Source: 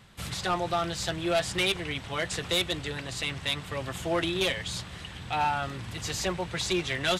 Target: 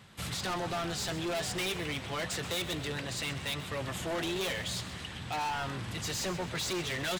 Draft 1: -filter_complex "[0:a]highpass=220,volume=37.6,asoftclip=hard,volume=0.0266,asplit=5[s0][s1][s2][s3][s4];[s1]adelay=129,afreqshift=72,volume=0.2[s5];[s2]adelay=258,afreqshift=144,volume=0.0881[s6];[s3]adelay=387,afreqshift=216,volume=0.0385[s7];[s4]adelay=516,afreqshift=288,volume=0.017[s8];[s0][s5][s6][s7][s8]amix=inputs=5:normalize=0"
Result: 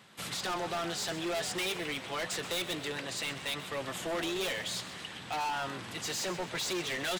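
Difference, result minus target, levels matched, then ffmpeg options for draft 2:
125 Hz band -7.5 dB
-filter_complex "[0:a]highpass=69,volume=37.6,asoftclip=hard,volume=0.0266,asplit=5[s0][s1][s2][s3][s4];[s1]adelay=129,afreqshift=72,volume=0.2[s5];[s2]adelay=258,afreqshift=144,volume=0.0881[s6];[s3]adelay=387,afreqshift=216,volume=0.0385[s7];[s4]adelay=516,afreqshift=288,volume=0.017[s8];[s0][s5][s6][s7][s8]amix=inputs=5:normalize=0"

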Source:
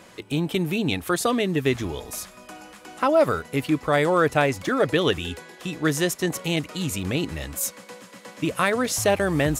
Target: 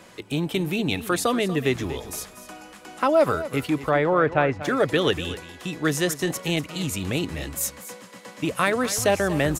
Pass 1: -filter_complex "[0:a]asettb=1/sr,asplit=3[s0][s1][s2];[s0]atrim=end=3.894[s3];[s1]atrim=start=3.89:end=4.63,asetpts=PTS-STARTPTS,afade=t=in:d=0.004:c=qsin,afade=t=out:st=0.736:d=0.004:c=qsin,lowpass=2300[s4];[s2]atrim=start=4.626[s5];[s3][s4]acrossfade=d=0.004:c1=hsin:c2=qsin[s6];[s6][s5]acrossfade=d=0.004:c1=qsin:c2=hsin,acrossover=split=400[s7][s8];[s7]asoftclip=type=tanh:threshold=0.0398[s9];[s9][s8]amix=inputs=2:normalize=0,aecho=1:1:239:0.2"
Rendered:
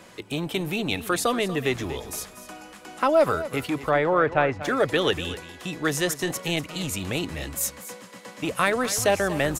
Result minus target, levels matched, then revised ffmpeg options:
saturation: distortion +11 dB
-filter_complex "[0:a]asettb=1/sr,asplit=3[s0][s1][s2];[s0]atrim=end=3.894[s3];[s1]atrim=start=3.89:end=4.63,asetpts=PTS-STARTPTS,afade=t=in:d=0.004:c=qsin,afade=t=out:st=0.736:d=0.004:c=qsin,lowpass=2300[s4];[s2]atrim=start=4.626[s5];[s3][s4]acrossfade=d=0.004:c1=hsin:c2=qsin[s6];[s6][s5]acrossfade=d=0.004:c1=qsin:c2=hsin,acrossover=split=400[s7][s8];[s7]asoftclip=type=tanh:threshold=0.119[s9];[s9][s8]amix=inputs=2:normalize=0,aecho=1:1:239:0.2"

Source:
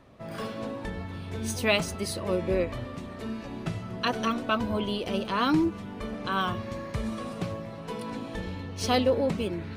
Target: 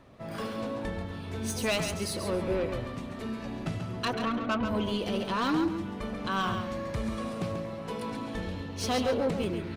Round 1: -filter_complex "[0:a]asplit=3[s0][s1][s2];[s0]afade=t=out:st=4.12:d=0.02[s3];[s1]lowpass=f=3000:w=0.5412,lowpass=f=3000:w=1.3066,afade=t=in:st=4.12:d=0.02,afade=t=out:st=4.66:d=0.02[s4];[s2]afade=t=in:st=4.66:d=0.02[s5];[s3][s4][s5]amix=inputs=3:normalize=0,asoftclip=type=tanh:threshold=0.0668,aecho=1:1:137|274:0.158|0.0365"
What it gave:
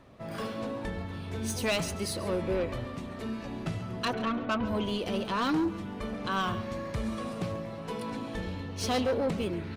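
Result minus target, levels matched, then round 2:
echo-to-direct -8.5 dB
-filter_complex "[0:a]asplit=3[s0][s1][s2];[s0]afade=t=out:st=4.12:d=0.02[s3];[s1]lowpass=f=3000:w=0.5412,lowpass=f=3000:w=1.3066,afade=t=in:st=4.12:d=0.02,afade=t=out:st=4.66:d=0.02[s4];[s2]afade=t=in:st=4.66:d=0.02[s5];[s3][s4][s5]amix=inputs=3:normalize=0,asoftclip=type=tanh:threshold=0.0668,aecho=1:1:137|274|411:0.422|0.097|0.0223"

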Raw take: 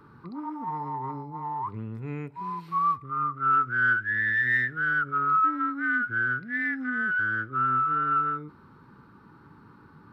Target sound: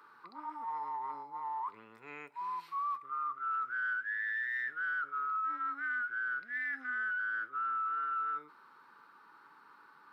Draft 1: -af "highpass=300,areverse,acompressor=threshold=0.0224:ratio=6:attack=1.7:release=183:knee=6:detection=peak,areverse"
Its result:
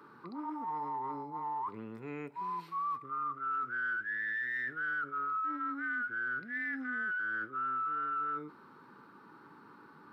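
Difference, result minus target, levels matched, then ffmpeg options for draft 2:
250 Hz band +14.5 dB
-af "highpass=860,areverse,acompressor=threshold=0.0224:ratio=6:attack=1.7:release=183:knee=6:detection=peak,areverse"

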